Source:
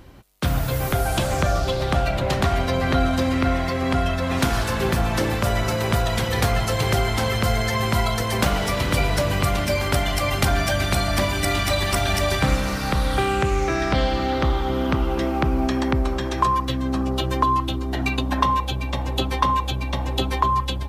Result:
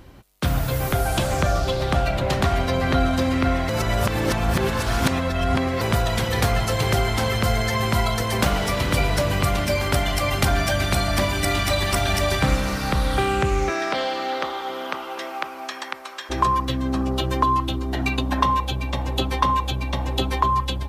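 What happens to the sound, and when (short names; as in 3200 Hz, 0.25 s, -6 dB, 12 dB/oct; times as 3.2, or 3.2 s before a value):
3.69–5.81 reverse
13.69–16.29 HPF 350 Hz -> 1300 Hz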